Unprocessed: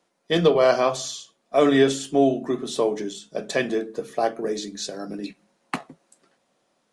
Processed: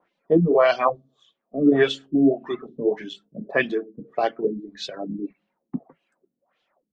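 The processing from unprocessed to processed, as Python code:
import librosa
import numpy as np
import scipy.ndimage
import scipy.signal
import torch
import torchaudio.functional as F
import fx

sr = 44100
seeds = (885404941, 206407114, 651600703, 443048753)

y = fx.filter_lfo_lowpass(x, sr, shape='sine', hz=1.7, low_hz=230.0, high_hz=3300.0, q=2.2)
y = fx.dereverb_blind(y, sr, rt60_s=1.7)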